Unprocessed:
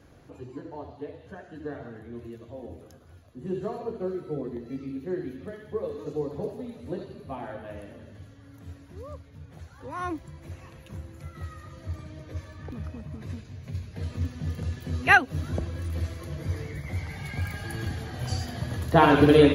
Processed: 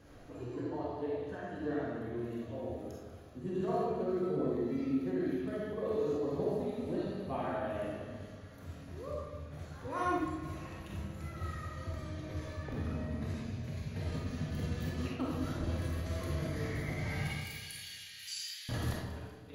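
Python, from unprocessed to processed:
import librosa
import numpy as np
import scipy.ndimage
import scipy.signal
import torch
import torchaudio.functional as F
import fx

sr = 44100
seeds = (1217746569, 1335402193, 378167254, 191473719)

y = fx.cheby2_highpass(x, sr, hz=550.0, order=4, stop_db=70, at=(17.27, 18.69))
y = fx.over_compress(y, sr, threshold_db=-31.0, ratio=-0.5)
y = fx.echo_feedback(y, sr, ms=193, feedback_pct=54, wet_db=-15)
y = fx.rev_freeverb(y, sr, rt60_s=1.0, hf_ratio=0.65, predelay_ms=5, drr_db=-4.0)
y = F.gain(torch.from_numpy(y), -8.0).numpy()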